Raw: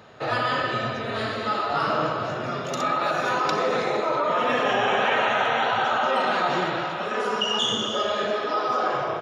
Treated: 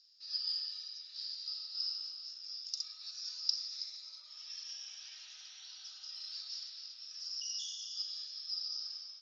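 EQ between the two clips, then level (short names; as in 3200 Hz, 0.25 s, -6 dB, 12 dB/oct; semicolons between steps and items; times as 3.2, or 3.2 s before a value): Butterworth band-pass 5100 Hz, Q 7.1; +9.5 dB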